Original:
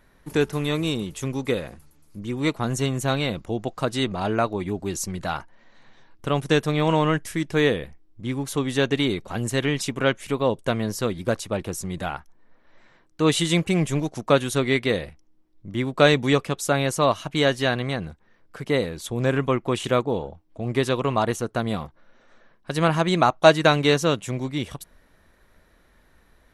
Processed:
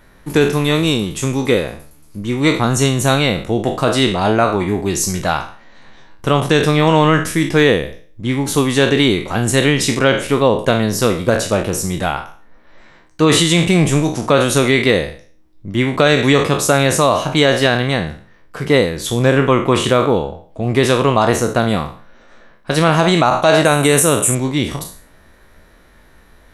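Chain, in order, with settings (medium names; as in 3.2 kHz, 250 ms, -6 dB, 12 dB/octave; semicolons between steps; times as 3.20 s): spectral sustain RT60 0.45 s; 23.65–24.35 s: resonant high shelf 6.8 kHz +13 dB, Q 3; loudness maximiser +10 dB; trim -1 dB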